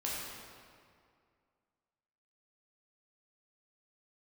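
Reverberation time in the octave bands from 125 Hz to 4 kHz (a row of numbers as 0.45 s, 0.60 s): 2.2 s, 2.3 s, 2.2 s, 2.2 s, 1.9 s, 1.5 s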